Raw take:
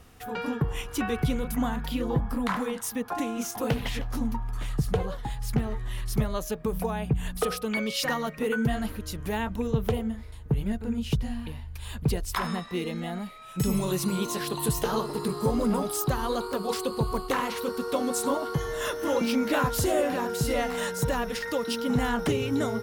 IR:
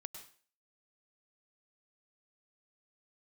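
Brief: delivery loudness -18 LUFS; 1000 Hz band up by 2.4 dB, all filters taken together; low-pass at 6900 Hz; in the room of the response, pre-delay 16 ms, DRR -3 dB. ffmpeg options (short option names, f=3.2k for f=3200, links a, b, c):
-filter_complex "[0:a]lowpass=6.9k,equalizer=f=1k:t=o:g=3,asplit=2[a][b];[1:a]atrim=start_sample=2205,adelay=16[c];[b][c]afir=irnorm=-1:irlink=0,volume=7dB[d];[a][d]amix=inputs=2:normalize=0,volume=6dB"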